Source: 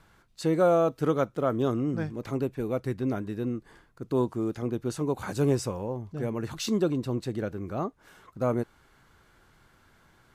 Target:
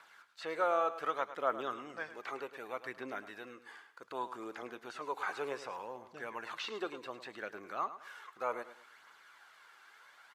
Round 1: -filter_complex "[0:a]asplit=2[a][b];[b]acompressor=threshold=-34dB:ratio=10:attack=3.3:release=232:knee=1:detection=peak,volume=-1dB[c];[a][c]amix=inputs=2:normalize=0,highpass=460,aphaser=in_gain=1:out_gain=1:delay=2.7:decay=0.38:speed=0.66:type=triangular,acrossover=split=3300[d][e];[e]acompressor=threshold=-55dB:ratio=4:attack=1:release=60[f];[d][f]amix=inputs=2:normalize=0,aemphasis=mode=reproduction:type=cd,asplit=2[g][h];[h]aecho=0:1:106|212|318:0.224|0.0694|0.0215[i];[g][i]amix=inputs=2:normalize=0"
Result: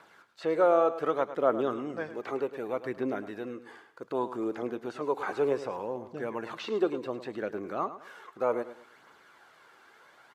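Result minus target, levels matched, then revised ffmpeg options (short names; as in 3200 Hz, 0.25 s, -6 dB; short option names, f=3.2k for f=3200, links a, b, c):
1000 Hz band -4.5 dB
-filter_complex "[0:a]asplit=2[a][b];[b]acompressor=threshold=-34dB:ratio=10:attack=3.3:release=232:knee=1:detection=peak,volume=-1dB[c];[a][c]amix=inputs=2:normalize=0,highpass=1.1k,aphaser=in_gain=1:out_gain=1:delay=2.7:decay=0.38:speed=0.66:type=triangular,acrossover=split=3300[d][e];[e]acompressor=threshold=-55dB:ratio=4:attack=1:release=60[f];[d][f]amix=inputs=2:normalize=0,aemphasis=mode=reproduction:type=cd,asplit=2[g][h];[h]aecho=0:1:106|212|318:0.224|0.0694|0.0215[i];[g][i]amix=inputs=2:normalize=0"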